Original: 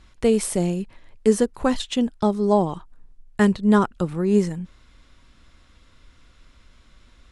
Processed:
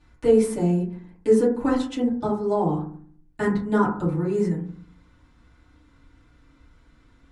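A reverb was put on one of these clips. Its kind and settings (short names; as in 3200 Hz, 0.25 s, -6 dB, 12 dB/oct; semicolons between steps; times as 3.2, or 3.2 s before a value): FDN reverb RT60 0.51 s, low-frequency decay 1.45×, high-frequency decay 0.25×, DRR -10 dB; gain -13 dB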